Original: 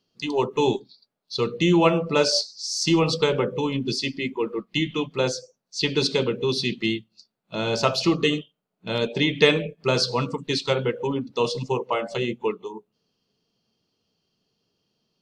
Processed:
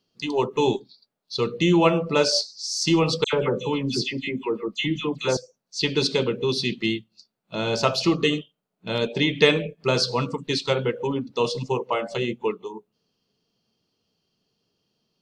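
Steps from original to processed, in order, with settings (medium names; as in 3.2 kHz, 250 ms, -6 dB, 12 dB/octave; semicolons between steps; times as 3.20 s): 3.24–5.37 s: phase dispersion lows, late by 92 ms, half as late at 2.1 kHz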